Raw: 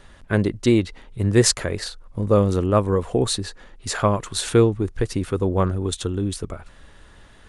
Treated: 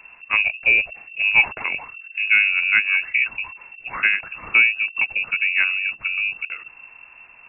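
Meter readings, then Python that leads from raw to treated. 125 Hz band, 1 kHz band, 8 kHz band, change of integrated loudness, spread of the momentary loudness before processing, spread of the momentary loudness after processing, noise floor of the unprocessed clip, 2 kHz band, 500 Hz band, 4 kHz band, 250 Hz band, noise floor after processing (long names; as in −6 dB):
below −25 dB, −5.5 dB, below −40 dB, +3.5 dB, 13 LU, 15 LU, −48 dBFS, +18.5 dB, below −20 dB, can't be measured, below −25 dB, −47 dBFS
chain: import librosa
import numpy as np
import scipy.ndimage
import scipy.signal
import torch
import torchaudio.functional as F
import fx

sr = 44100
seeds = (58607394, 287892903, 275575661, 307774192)

y = fx.freq_invert(x, sr, carrier_hz=2700)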